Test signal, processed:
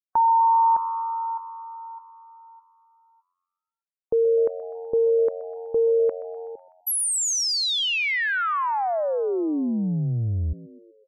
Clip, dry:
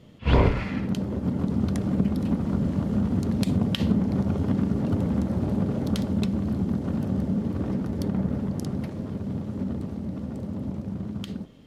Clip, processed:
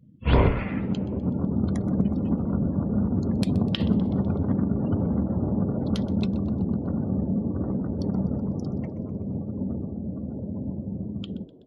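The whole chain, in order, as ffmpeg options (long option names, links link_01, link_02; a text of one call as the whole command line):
ffmpeg -i in.wav -filter_complex "[0:a]afftdn=noise_reduction=32:noise_floor=-42,asplit=6[link_01][link_02][link_03][link_04][link_05][link_06];[link_02]adelay=125,afreqshift=89,volume=-19dB[link_07];[link_03]adelay=250,afreqshift=178,volume=-23.9dB[link_08];[link_04]adelay=375,afreqshift=267,volume=-28.8dB[link_09];[link_05]adelay=500,afreqshift=356,volume=-33.6dB[link_10];[link_06]adelay=625,afreqshift=445,volume=-38.5dB[link_11];[link_01][link_07][link_08][link_09][link_10][link_11]amix=inputs=6:normalize=0" out.wav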